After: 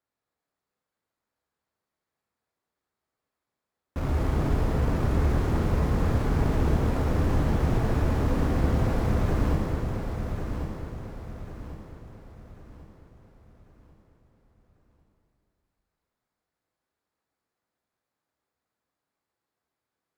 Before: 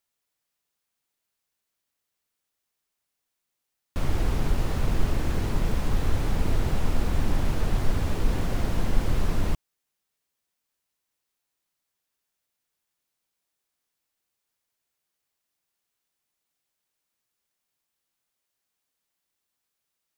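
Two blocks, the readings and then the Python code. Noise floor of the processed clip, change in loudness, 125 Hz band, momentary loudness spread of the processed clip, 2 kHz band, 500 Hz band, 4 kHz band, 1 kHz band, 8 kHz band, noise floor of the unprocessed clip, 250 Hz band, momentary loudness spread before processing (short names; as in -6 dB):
under -85 dBFS, +2.5 dB, +4.0 dB, 15 LU, +0.5 dB, +5.0 dB, -4.5 dB, +3.5 dB, -4.5 dB, -83 dBFS, +4.5 dB, 1 LU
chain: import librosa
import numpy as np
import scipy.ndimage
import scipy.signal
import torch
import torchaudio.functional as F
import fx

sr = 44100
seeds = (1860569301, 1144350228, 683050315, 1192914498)

p1 = scipy.signal.medfilt(x, 15)
p2 = fx.rev_plate(p1, sr, seeds[0], rt60_s=2.7, hf_ratio=0.9, predelay_ms=0, drr_db=-1.5)
p3 = fx.vibrato(p2, sr, rate_hz=2.5, depth_cents=11.0)
p4 = scipy.signal.sosfilt(scipy.signal.butter(2, 42.0, 'highpass', fs=sr, output='sos'), p3)
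y = p4 + fx.echo_feedback(p4, sr, ms=1095, feedback_pct=39, wet_db=-7.0, dry=0)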